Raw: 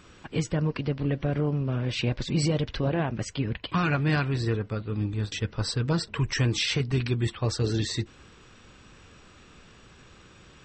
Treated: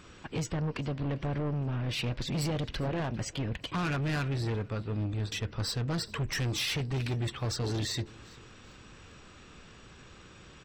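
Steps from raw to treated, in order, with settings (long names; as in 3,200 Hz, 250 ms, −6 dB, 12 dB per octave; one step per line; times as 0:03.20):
soft clipping −28 dBFS, distortion −9 dB
on a send: repeating echo 399 ms, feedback 40%, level −23 dB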